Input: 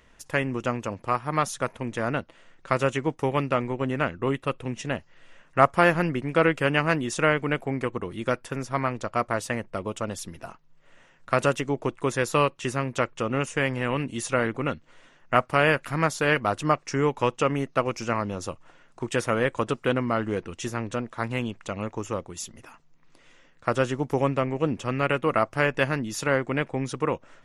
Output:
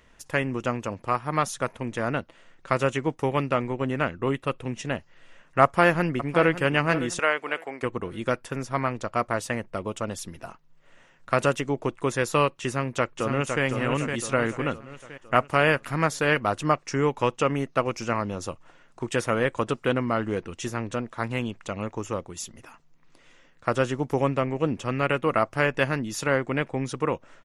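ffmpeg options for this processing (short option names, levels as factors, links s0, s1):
-filter_complex "[0:a]asplit=2[s0][s1];[s1]afade=t=in:st=5.63:d=0.01,afade=t=out:st=6.53:d=0.01,aecho=0:1:560|1120|1680:0.223872|0.0783552|0.0274243[s2];[s0][s2]amix=inputs=2:normalize=0,asettb=1/sr,asplit=3[s3][s4][s5];[s3]atrim=end=7.194[s6];[s4]atrim=start=7.19:end=7.83,asetpts=PTS-STARTPTS,afade=t=in:d=0.004:c=qsin,afade=t=out:st=0.636:d=0.004:c=qsin,highpass=550[s7];[s5]atrim=start=7.826[s8];[s6][s7]acrossfade=d=0.004:c1=hsin:c2=qsin[s9];[s9][s8]acrossfade=d=0.004:c1=qsin:c2=hsin,asplit=2[s10][s11];[s11]afade=t=in:st=12.68:d=0.01,afade=t=out:st=13.64:d=0.01,aecho=0:1:510|1020|1530|2040|2550|3060:0.530884|0.265442|0.132721|0.0663606|0.0331803|0.0165901[s12];[s10][s12]amix=inputs=2:normalize=0"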